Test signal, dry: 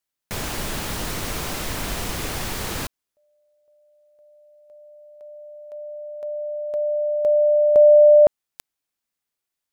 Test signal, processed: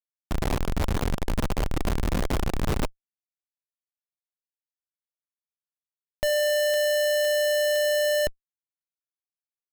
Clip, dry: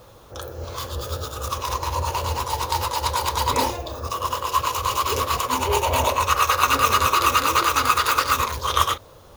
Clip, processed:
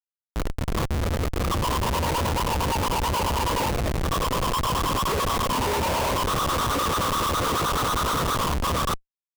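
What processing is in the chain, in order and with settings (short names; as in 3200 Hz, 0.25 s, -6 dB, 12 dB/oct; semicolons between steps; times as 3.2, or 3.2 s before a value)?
LPF 1300 Hz 24 dB/oct; bell 120 Hz -11.5 dB 2.9 oct; in parallel at -1 dB: compressor 10:1, threshold -29 dBFS; on the sum: Schmitt trigger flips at -27.5 dBFS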